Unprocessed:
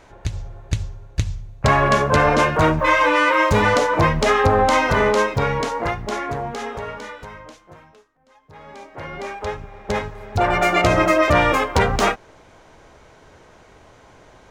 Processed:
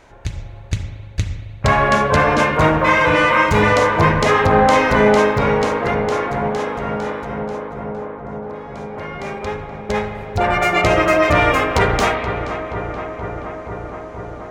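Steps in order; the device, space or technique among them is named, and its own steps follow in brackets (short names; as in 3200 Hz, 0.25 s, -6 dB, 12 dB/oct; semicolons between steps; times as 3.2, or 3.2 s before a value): bell 2200 Hz +2 dB; dub delay into a spring reverb (darkening echo 0.476 s, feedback 83%, low-pass 2400 Hz, level -10.5 dB; spring tank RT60 1.5 s, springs 33/38 ms, chirp 45 ms, DRR 5.5 dB)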